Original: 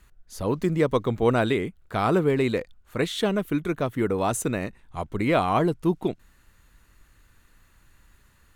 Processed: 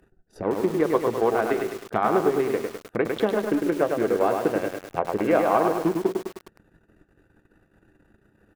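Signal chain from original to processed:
adaptive Wiener filter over 41 samples
parametric band 110 Hz +4.5 dB 0.67 octaves
transient designer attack +7 dB, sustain −10 dB
0:03.26–0:05.78: hollow resonant body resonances 540/1,600/2,700 Hz, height 9 dB, ringing for 25 ms
downward compressor 2 to 1, threshold −43 dBFS, peak gain reduction 17 dB
treble cut that deepens with the level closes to 1,900 Hz, closed at −32 dBFS
RIAA equalisation recording
slap from a distant wall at 20 metres, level −25 dB
convolution reverb RT60 0.15 s, pre-delay 3 ms, DRR 11.5 dB
feedback echo at a low word length 103 ms, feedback 55%, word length 7 bits, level −4 dB
level +3 dB

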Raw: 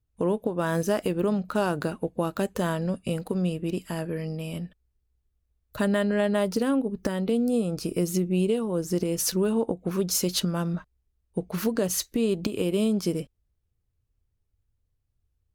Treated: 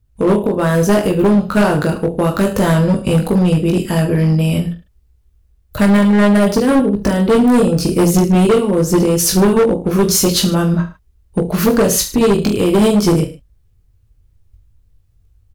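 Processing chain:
in parallel at +1 dB: output level in coarse steps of 23 dB
on the sum: low-shelf EQ 130 Hz +9.5 dB
reverse bouncing-ball delay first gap 20 ms, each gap 1.2×, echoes 5
automatic gain control gain up to 3 dB
hard clipping −16 dBFS, distortion −8 dB
level +8 dB

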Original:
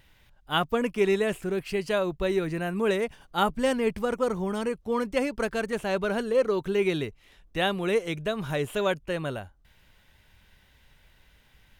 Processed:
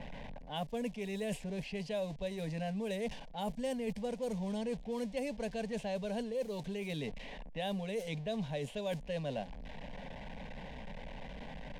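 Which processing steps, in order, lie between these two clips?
converter with a step at zero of −37 dBFS
low-pass that shuts in the quiet parts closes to 1,200 Hz, open at −20 dBFS
reversed playback
downward compressor 5 to 1, threshold −33 dBFS, peak gain reduction 14 dB
reversed playback
phaser with its sweep stopped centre 350 Hz, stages 6
multiband upward and downward compressor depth 40%

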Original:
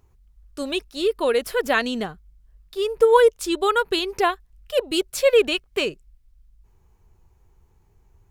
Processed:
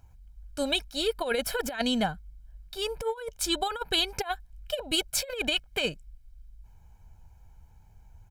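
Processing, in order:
comb filter 1.3 ms, depth 76%
compressor whose output falls as the input rises −23 dBFS, ratio −0.5
level −4 dB

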